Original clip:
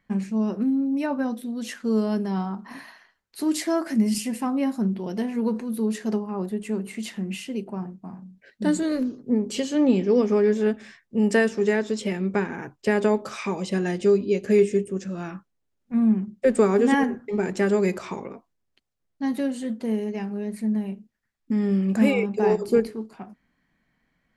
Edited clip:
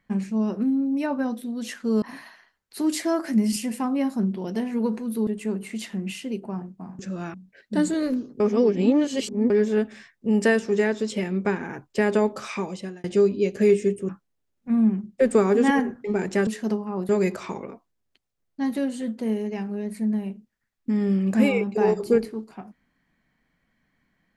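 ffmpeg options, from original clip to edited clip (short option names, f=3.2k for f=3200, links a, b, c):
-filter_complex "[0:a]asplit=11[a][b][c][d][e][f][g][h][i][j][k];[a]atrim=end=2.022[l];[b]atrim=start=2.638:end=5.892[m];[c]atrim=start=6.508:end=8.232[n];[d]atrim=start=14.978:end=15.332[o];[e]atrim=start=8.228:end=9.292[p];[f]atrim=start=9.288:end=10.392,asetpts=PTS-STARTPTS,areverse[q];[g]atrim=start=10.388:end=13.93,asetpts=PTS-STARTPTS,afade=t=out:st=3.042:d=0.5[r];[h]atrim=start=13.93:end=14.982,asetpts=PTS-STARTPTS,afade=t=in:d=0.004:c=hsin[s];[i]atrim=start=15.328:end=17.712[t];[j]atrim=start=5.888:end=6.512[u];[k]atrim=start=17.708[v];[l][m]acrossfade=d=0.004:c1=hsin:c2=hsin[w];[w][n]acrossfade=d=0.004:c1=hsin:c2=hsin[x];[x][o]acrossfade=d=0.004:c1=hsin:c2=hsin[y];[y][p]acrossfade=d=0.004:c1=hsin:c2=hsin[z];[z][q]acrossfade=d=0.004:c1=hsin:c2=hsin[aa];[r][s]concat=n=2:v=0:a=1[ab];[aa][ab]acrossfade=d=0.004:c1=hsin:c2=hsin[ac];[ac][t]acrossfade=d=0.004:c1=hsin:c2=hsin[ad];[ad][u]acrossfade=d=0.004:c1=hsin:c2=hsin[ae];[ae][v]acrossfade=d=0.004:c1=hsin:c2=hsin"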